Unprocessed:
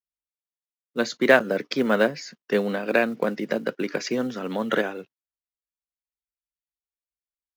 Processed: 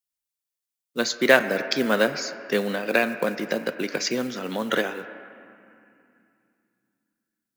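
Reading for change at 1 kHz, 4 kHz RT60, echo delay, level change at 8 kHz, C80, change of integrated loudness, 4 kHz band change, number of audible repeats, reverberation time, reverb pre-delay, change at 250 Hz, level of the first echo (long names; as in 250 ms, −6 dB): 0.0 dB, 2.2 s, no echo audible, +7.5 dB, 11.5 dB, 0.0 dB, +5.0 dB, no echo audible, 2.5 s, 6 ms, −1.5 dB, no echo audible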